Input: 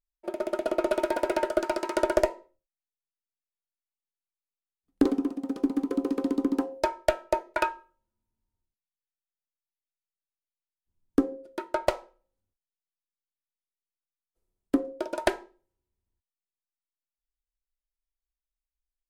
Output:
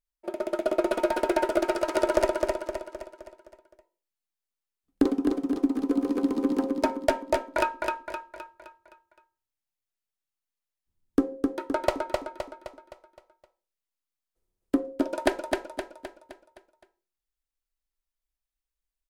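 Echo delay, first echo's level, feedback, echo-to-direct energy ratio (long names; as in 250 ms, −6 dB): 259 ms, −3.5 dB, 48%, −2.5 dB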